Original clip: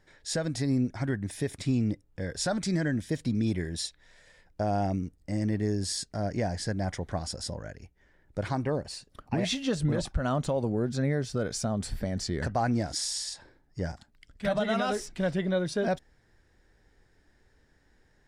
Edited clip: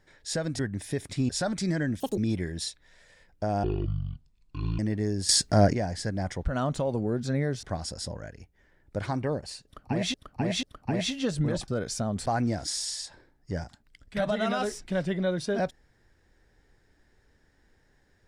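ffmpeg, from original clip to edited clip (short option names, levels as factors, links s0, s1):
-filter_complex "[0:a]asplit=15[s0][s1][s2][s3][s4][s5][s6][s7][s8][s9][s10][s11][s12][s13][s14];[s0]atrim=end=0.592[s15];[s1]atrim=start=1.078:end=1.782[s16];[s2]atrim=start=2.338:end=3.054[s17];[s3]atrim=start=3.05:end=3.35,asetpts=PTS-STARTPTS,asetrate=75411,aresample=44100[s18];[s4]atrim=start=3.346:end=4.814[s19];[s5]atrim=start=4.81:end=5.41,asetpts=PTS-STARTPTS,asetrate=22932,aresample=44100[s20];[s6]atrim=start=5.406:end=5.912[s21];[s7]atrim=start=5.908:end=6.352,asetpts=PTS-STARTPTS,volume=3.76[s22];[s8]atrim=start=6.348:end=7.052[s23];[s9]atrim=start=10.118:end=11.322[s24];[s10]atrim=start=7.048:end=9.562[s25];[s11]atrim=start=9.068:end=9.562[s26];[s12]atrim=start=9.068:end=10.122[s27];[s13]atrim=start=11.318:end=11.902[s28];[s14]atrim=start=12.538[s29];[s15][s16]acrossfade=d=0.004:c1=hsin:c2=hsin[s30];[s30][s17]acrossfade=d=0.004:c1=hsin:c2=hsin[s31];[s31][s18]acrossfade=d=0.004:c1=hsin:c2=hsin[s32];[s32][s19]acrossfade=d=0.004:c1=hsin:c2=hsin[s33];[s33][s20]acrossfade=d=0.004:c1=hsin:c2=hsin[s34];[s34][s21]acrossfade=d=0.004:c1=hsin:c2=hsin[s35];[s35][s22]acrossfade=d=0.004:c1=hsin:c2=hsin[s36];[s36][s23]acrossfade=d=0.004:c1=hsin:c2=hsin[s37];[s37][s24]acrossfade=d=0.004:c1=hsin:c2=hsin[s38];[s38][s25]acrossfade=d=0.004:c1=hsin:c2=hsin[s39];[s39][s26]acrossfade=d=0.004:c1=hsin:c2=hsin[s40];[s40][s27]acrossfade=d=0.004:c1=hsin:c2=hsin[s41];[s41][s28]acrossfade=d=0.004:c1=hsin:c2=hsin[s42];[s42][s29]acrossfade=d=0.004:c1=hsin:c2=hsin"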